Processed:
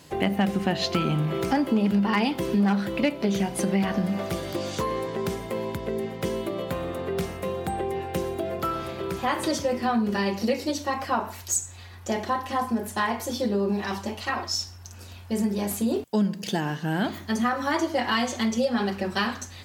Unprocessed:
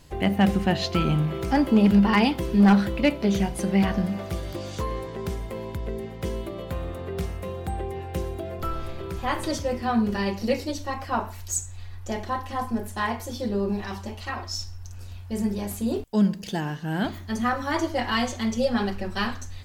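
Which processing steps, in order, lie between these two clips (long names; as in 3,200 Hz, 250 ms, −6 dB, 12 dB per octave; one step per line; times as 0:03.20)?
high-pass filter 150 Hz 12 dB per octave
downward compressor 3 to 1, threshold −27 dBFS, peak gain reduction 11 dB
level +5 dB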